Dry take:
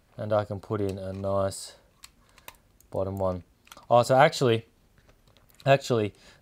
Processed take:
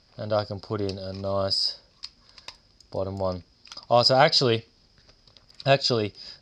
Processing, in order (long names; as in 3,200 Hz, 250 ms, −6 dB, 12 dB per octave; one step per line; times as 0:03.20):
low-pass with resonance 5,000 Hz, resonance Q 16